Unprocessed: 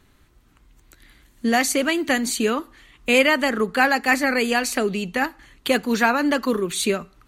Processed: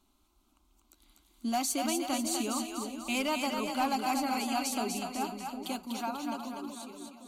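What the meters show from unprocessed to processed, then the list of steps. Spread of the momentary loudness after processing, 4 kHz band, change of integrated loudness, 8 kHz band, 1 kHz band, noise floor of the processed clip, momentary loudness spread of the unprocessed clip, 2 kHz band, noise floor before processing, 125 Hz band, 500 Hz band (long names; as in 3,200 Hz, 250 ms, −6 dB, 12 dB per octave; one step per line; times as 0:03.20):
9 LU, −10.5 dB, −12.0 dB, −7.5 dB, −8.5 dB, −70 dBFS, 7 LU, −19.5 dB, −58 dBFS, below −10 dB, −16.0 dB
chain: fade-out on the ending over 2.38 s
low-shelf EQ 220 Hz −6 dB
phaser with its sweep stopped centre 480 Hz, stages 6
hard clipping −17 dBFS, distortion −21 dB
echo with a time of its own for lows and highs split 600 Hz, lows 377 ms, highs 245 ms, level −4 dB
level −7.5 dB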